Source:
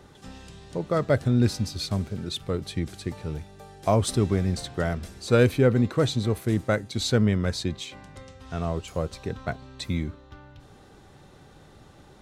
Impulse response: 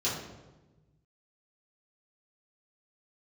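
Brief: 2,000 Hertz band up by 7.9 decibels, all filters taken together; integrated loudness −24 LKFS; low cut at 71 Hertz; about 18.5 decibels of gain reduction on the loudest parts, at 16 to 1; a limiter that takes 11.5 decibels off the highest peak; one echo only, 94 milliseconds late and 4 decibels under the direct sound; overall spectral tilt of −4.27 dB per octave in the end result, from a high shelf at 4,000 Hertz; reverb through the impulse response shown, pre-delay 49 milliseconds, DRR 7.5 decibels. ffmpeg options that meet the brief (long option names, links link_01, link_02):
-filter_complex "[0:a]highpass=71,equalizer=frequency=2000:width_type=o:gain=9,highshelf=frequency=4000:gain=8,acompressor=threshold=-31dB:ratio=16,alimiter=level_in=1dB:limit=-24dB:level=0:latency=1,volume=-1dB,aecho=1:1:94:0.631,asplit=2[link_01][link_02];[1:a]atrim=start_sample=2205,adelay=49[link_03];[link_02][link_03]afir=irnorm=-1:irlink=0,volume=-15.5dB[link_04];[link_01][link_04]amix=inputs=2:normalize=0,volume=11.5dB"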